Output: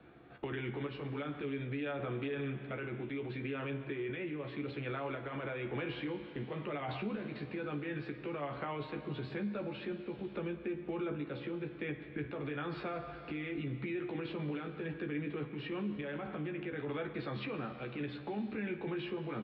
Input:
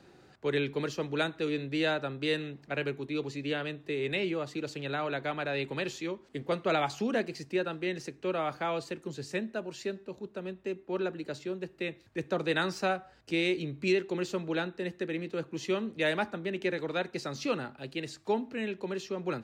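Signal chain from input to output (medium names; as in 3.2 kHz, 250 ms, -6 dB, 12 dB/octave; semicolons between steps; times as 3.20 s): inverse Chebyshev low-pass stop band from 6.3 kHz, stop band 40 dB; gate with hold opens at -45 dBFS; in parallel at +1 dB: compressor with a negative ratio -37 dBFS, ratio -0.5; on the sum: peak limiter -25.5 dBFS, peak gain reduction 9 dB; random-step tremolo; pitch shift -1.5 st; doubling 14 ms -4.5 dB; on a send at -9 dB: reverberation RT60 2.9 s, pre-delay 8 ms; on the sum: three bands compressed up and down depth 70%; trim -5 dB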